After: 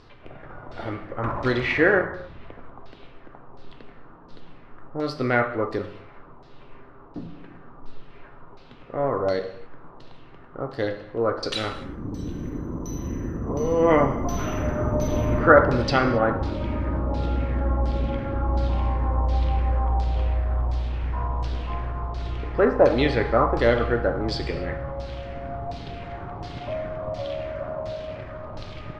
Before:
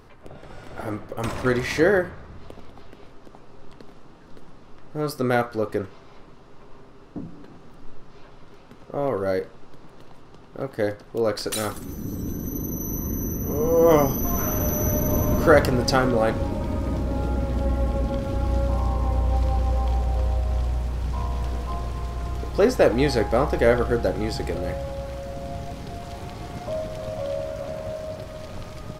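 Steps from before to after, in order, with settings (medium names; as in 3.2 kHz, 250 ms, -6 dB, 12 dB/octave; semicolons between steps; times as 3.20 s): LFO low-pass saw down 1.4 Hz 910–4900 Hz; gated-style reverb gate 300 ms falling, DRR 7.5 dB; trim -2 dB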